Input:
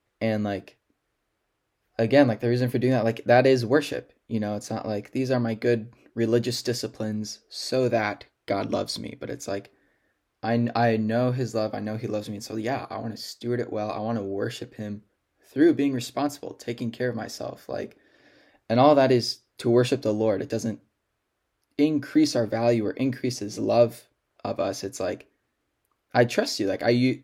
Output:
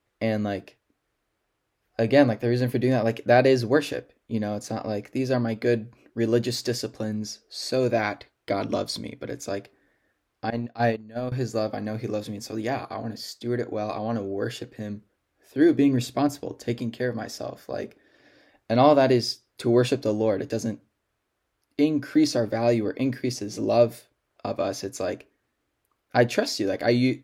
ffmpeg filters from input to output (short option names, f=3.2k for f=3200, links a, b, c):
-filter_complex "[0:a]asettb=1/sr,asplit=3[a][b][c];[a]atrim=end=10.504[d];[b]atrim=start=10.5:end=11.32,asetpts=PTS-STARTPTS,afade=t=in:d=0.004:c=qsin,afade=t=out:st=0.816:d=0.004:c=qsin,agate=range=-19dB:threshold=-22dB:ratio=16:release=100:detection=peak[e];[c]atrim=start=11.316[f];[d][e]acrossfade=d=0.004:c1=hsin:c2=qsin[g];[g][f]acrossfade=d=0.004:c1=qsin:c2=hsin,asettb=1/sr,asplit=3[h][i][j];[h]atrim=end=15.774[k];[i]atrim=start=15.77:end=16.79,asetpts=PTS-STARTPTS,afade=t=in:d=0.004:c=qsin,afade=t=out:st=1.016:d=0.004:c=qsin,lowshelf=f=300:g=8[l];[j]atrim=start=16.786[m];[k][l]acrossfade=d=0.004:c1=hsin:c2=qsin[n];[n][m]acrossfade=d=0.004:c1=qsin:c2=hsin"